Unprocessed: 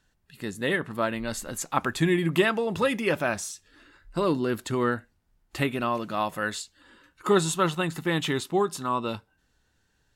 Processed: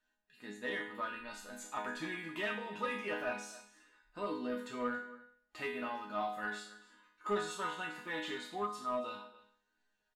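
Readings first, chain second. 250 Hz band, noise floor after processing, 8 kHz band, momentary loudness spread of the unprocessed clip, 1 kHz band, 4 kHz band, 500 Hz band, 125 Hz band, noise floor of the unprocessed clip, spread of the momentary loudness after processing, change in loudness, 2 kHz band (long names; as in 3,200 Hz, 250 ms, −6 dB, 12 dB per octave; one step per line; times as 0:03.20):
−15.5 dB, −82 dBFS, −16.5 dB, 12 LU, −10.0 dB, −12.5 dB, −13.5 dB, −24.5 dB, −70 dBFS, 13 LU, −12.5 dB, −9.5 dB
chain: resonators tuned to a chord G#3 minor, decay 0.53 s
single-tap delay 278 ms −19.5 dB
mid-hump overdrive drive 14 dB, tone 2,200 Hz, clips at −28 dBFS
level +4.5 dB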